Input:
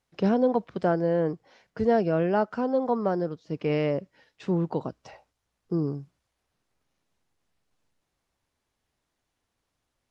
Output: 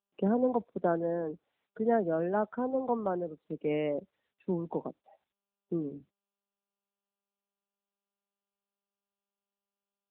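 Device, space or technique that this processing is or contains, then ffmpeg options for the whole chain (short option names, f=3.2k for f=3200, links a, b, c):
mobile call with aggressive noise cancelling: -af "highpass=f=180:w=0.5412,highpass=f=180:w=1.3066,afftdn=nr=24:nf=-36,volume=-3.5dB" -ar 8000 -c:a libopencore_amrnb -b:a 10200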